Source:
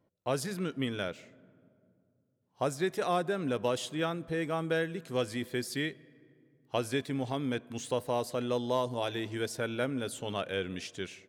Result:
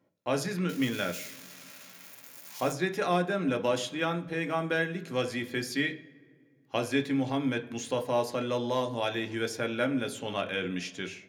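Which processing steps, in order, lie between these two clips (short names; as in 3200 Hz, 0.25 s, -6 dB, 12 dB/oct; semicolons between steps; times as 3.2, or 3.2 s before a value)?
0.69–2.72 switching spikes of -32.5 dBFS; reverb RT60 0.40 s, pre-delay 3 ms, DRR 5 dB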